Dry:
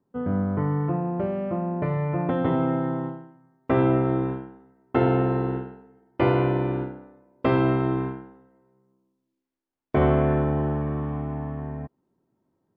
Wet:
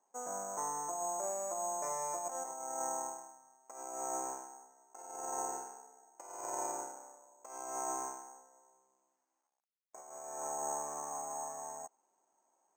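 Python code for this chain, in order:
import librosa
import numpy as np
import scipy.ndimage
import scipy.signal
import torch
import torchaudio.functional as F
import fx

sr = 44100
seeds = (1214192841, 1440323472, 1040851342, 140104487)

y = fx.law_mismatch(x, sr, coded='mu')
y = fx.ladder_bandpass(y, sr, hz=890.0, resonance_pct=60)
y = (np.kron(scipy.signal.resample_poly(y, 1, 6), np.eye(6)[0]) * 6)[:len(y)]
y = fx.over_compress(y, sr, threshold_db=-32.0, ratio=-0.5)
y = fx.air_absorb(y, sr, metres=95.0)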